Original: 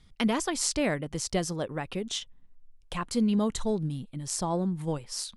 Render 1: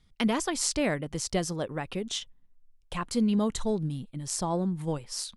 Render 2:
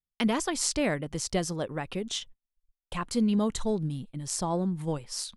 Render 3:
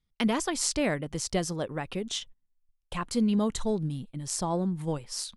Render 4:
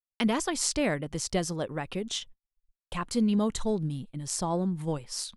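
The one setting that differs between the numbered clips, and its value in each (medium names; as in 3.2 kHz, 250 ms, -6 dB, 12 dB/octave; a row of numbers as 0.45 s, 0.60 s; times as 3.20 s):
gate, range: -6 dB, -39 dB, -21 dB, -56 dB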